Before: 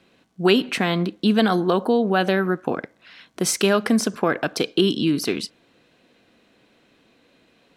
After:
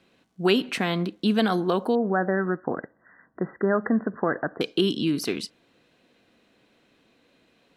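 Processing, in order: 1.95–4.61 brick-wall FIR low-pass 2000 Hz; gain -4 dB

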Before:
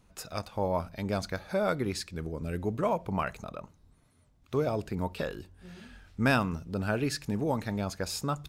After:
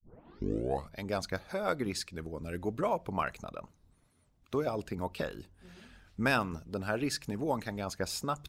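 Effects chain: tape start at the beginning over 0.97 s; harmonic-percussive split harmonic -8 dB

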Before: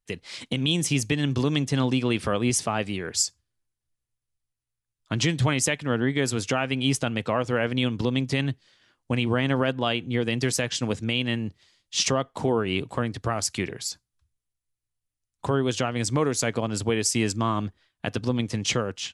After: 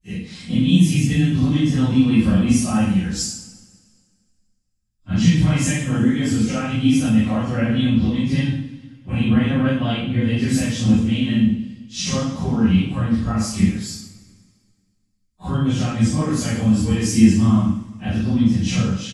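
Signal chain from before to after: phase scrambler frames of 0.1 s; resonant low shelf 290 Hz +14 dB, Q 1.5; comb 3.8 ms, depth 41%; two-slope reverb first 0.59 s, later 1.9 s, from -18 dB, DRR -10 dB; gain -11 dB

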